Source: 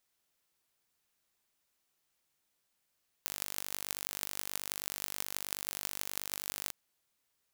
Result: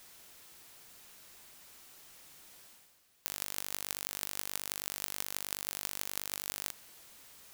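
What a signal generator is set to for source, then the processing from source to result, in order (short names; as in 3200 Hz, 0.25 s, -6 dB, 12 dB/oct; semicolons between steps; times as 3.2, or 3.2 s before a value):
pulse train 49.4/s, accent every 8, -6 dBFS 3.45 s
G.711 law mismatch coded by mu; reverse; upward compressor, threshold -44 dBFS; reverse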